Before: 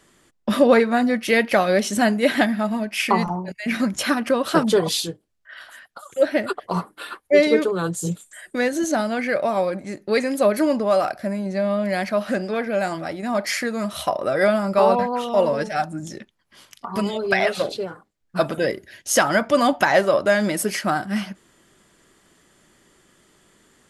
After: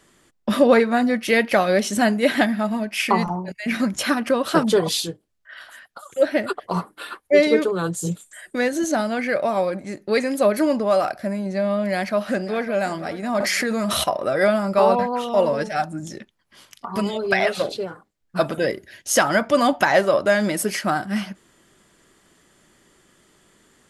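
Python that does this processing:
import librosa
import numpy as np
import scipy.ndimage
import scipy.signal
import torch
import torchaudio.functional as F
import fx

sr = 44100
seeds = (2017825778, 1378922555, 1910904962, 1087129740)

y = fx.echo_throw(x, sr, start_s=11.91, length_s=0.78, ms=550, feedback_pct=45, wet_db=-16.0)
y = fx.env_flatten(y, sr, amount_pct=100, at=(13.4, 14.04))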